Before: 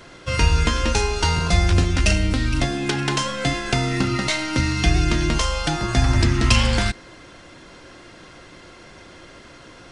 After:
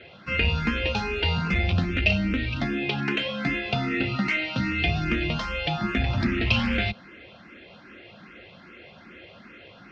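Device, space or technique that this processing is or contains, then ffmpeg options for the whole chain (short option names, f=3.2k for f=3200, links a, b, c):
barber-pole phaser into a guitar amplifier: -filter_complex "[0:a]asplit=2[a][b];[b]afreqshift=2.5[c];[a][c]amix=inputs=2:normalize=1,asoftclip=type=tanh:threshold=-12.5dB,highpass=78,equalizer=f=130:t=q:w=4:g=-5,equalizer=f=210:t=q:w=4:g=7,equalizer=f=310:t=q:w=4:g=-4,equalizer=f=1k:t=q:w=4:g=-8,equalizer=f=2.5k:t=q:w=4:g=7,lowpass=f=3.7k:w=0.5412,lowpass=f=3.7k:w=1.3066"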